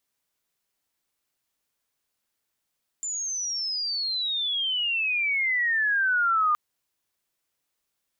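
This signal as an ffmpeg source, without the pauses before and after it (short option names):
-f lavfi -i "aevalsrc='pow(10,(-28+9*t/3.52)/20)*sin(2*PI*7200*3.52/log(1200/7200)*(exp(log(1200/7200)*t/3.52)-1))':d=3.52:s=44100"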